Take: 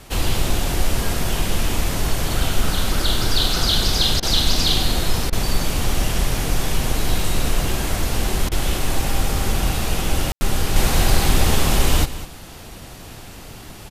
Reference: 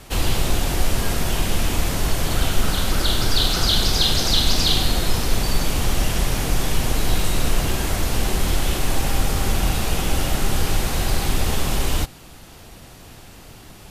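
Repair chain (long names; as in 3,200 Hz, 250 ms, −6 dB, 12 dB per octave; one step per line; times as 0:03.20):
ambience match 0:10.32–0:10.41
repair the gap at 0:04.20/0:05.30/0:08.49, 25 ms
echo removal 200 ms −14.5 dB
level 0 dB, from 0:10.76 −4.5 dB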